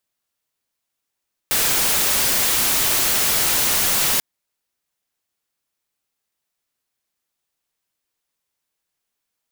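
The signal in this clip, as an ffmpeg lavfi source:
ffmpeg -f lavfi -i "anoisesrc=color=white:amplitude=0.206:duration=2.69:sample_rate=44100:seed=1" out.wav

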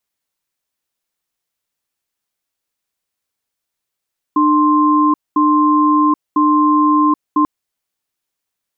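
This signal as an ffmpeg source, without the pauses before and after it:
ffmpeg -f lavfi -i "aevalsrc='0.251*(sin(2*PI*300*t)+sin(2*PI*1050*t))*clip(min(mod(t,1),0.78-mod(t,1))/0.005,0,1)':duration=3.09:sample_rate=44100" out.wav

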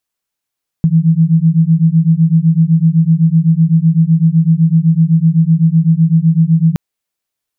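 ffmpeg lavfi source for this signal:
ffmpeg -f lavfi -i "aevalsrc='0.316*(sin(2*PI*159*t)+sin(2*PI*166.9*t))':duration=5.92:sample_rate=44100" out.wav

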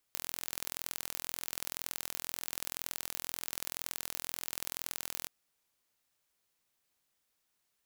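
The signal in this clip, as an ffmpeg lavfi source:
ffmpeg -f lavfi -i "aevalsrc='0.376*eq(mod(n,1050),0)*(0.5+0.5*eq(mod(n,2100),0))':duration=5.14:sample_rate=44100" out.wav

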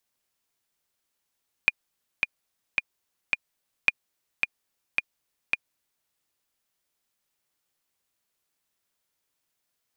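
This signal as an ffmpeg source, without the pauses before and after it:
ffmpeg -f lavfi -i "aevalsrc='pow(10,(-5-4.5*gte(mod(t,4*60/109),60/109))/20)*sin(2*PI*2430*mod(t,60/109))*exp(-6.91*mod(t,60/109)/0.03)':duration=4.4:sample_rate=44100" out.wav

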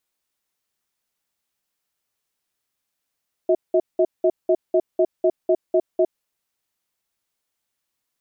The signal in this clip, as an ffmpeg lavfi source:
ffmpeg -f lavfi -i "aevalsrc='0.15*(sin(2*PI*363*t)+sin(2*PI*641*t))*clip(min(mod(t,0.25),0.06-mod(t,0.25))/0.005,0,1)':duration=2.57:sample_rate=44100" out.wav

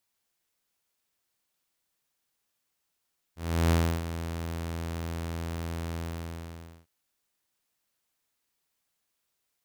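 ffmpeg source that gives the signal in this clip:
ffmpeg -f lavfi -i "aevalsrc='0.133*(2*mod(83.3*t,1)-1)':duration=3.503:sample_rate=44100,afade=type=in:duration=0.349,afade=type=out:start_time=0.349:duration=0.305:silence=0.251,afade=type=out:start_time=2.61:duration=0.893" out.wav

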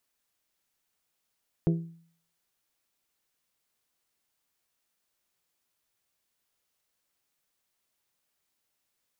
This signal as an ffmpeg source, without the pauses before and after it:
ffmpeg -f lavfi -i "aevalsrc='0.112*pow(10,-3*t/0.54)*sin(2*PI*166*t)+0.0596*pow(10,-3*t/0.332)*sin(2*PI*332*t)+0.0316*pow(10,-3*t/0.293)*sin(2*PI*398.4*t)+0.0168*pow(10,-3*t/0.25)*sin(2*PI*498*t)+0.00891*pow(10,-3*t/0.205)*sin(2*PI*664*t)':duration=0.89:sample_rate=44100" out.wav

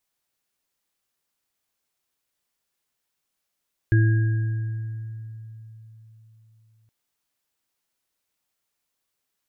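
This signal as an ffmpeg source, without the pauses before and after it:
ffmpeg -f lavfi -i "aevalsrc='0.211*pow(10,-3*t/3.93)*sin(2*PI*111*t)+0.0668*pow(10,-3*t/1.85)*sin(2*PI*330*t)+0.0447*pow(10,-3*t/2)*sin(2*PI*1640*t)':duration=2.97:sample_rate=44100" out.wav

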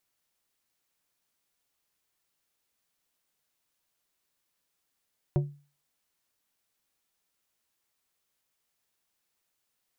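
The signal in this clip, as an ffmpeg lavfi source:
ffmpeg -f lavfi -i "aevalsrc='0.112*pow(10,-3*t/0.37)*sin(2*PI*144*t)+0.0531*pow(10,-3*t/0.195)*sin(2*PI*360*t)+0.0251*pow(10,-3*t/0.14)*sin(2*PI*576*t)+0.0119*pow(10,-3*t/0.12)*sin(2*PI*720*t)+0.00562*pow(10,-3*t/0.1)*sin(2*PI*936*t)':duration=0.89:sample_rate=44100" out.wav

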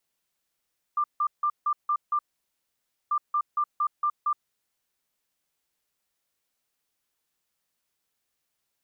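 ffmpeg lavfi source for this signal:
ffmpeg -f lavfi -i "aevalsrc='0.0841*sin(2*PI*1190*t)*clip(min(mod(mod(t,2.14),0.23),0.07-mod(mod(t,2.14),0.23))/0.005,0,1)*lt(mod(t,2.14),1.38)':duration=4.28:sample_rate=44100" out.wav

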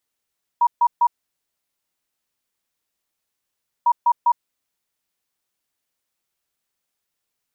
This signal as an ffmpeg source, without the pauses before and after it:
ffmpeg -f lavfi -i "aevalsrc='0.251*sin(2*PI*955*t)*clip(min(mod(mod(t,3.25),0.2),0.06-mod(mod(t,3.25),0.2))/0.005,0,1)*lt(mod(t,3.25),0.6)':duration=6.5:sample_rate=44100" out.wav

